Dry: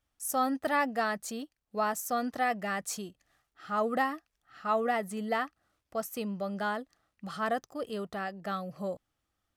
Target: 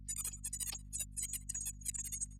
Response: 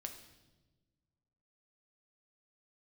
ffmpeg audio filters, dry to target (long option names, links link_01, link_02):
-filter_complex "[0:a]afftfilt=real='real(if(lt(b,272),68*(eq(floor(b/68),0)*3+eq(floor(b/68),1)*0+eq(floor(b/68),2)*1+eq(floor(b/68),3)*2)+mod(b,68),b),0)':imag='imag(if(lt(b,272),68*(eq(floor(b/68),0)*3+eq(floor(b/68),1)*0+eq(floor(b/68),2)*1+eq(floor(b/68),3)*2)+mod(b,68),b),0)':win_size=2048:overlap=0.75,aeval=exprs='0.168*(cos(1*acos(clip(val(0)/0.168,-1,1)))-cos(1*PI/2))+0.00266*(cos(4*acos(clip(val(0)/0.168,-1,1)))-cos(4*PI/2))+0.0168*(cos(7*acos(clip(val(0)/0.168,-1,1)))-cos(7*PI/2))':channel_layout=same,asetrate=175959,aresample=44100,asplit=2[link_01][link_02];[link_02]adelay=186,lowpass=frequency=1200:poles=1,volume=-11dB,asplit=2[link_03][link_04];[link_04]adelay=186,lowpass=frequency=1200:poles=1,volume=0.38,asplit=2[link_05][link_06];[link_06]adelay=186,lowpass=frequency=1200:poles=1,volume=0.38,asplit=2[link_07][link_08];[link_08]adelay=186,lowpass=frequency=1200:poles=1,volume=0.38[link_09];[link_01][link_03][link_05][link_07][link_09]amix=inputs=5:normalize=0,areverse,acompressor=threshold=-44dB:ratio=6,areverse,equalizer=frequency=2500:width=0.32:gain=13,afreqshift=84,aeval=exprs='val(0)+0.002*(sin(2*PI*50*n/s)+sin(2*PI*2*50*n/s)/2+sin(2*PI*3*50*n/s)/3+sin(2*PI*4*50*n/s)/4+sin(2*PI*5*50*n/s)/5)':channel_layout=same,acompressor=mode=upward:threshold=-55dB:ratio=2.5,afftdn=noise_reduction=18:noise_floor=-54,highshelf=frequency=8600:gain=-8,bandreject=frequency=1400:width=12,volume=4dB"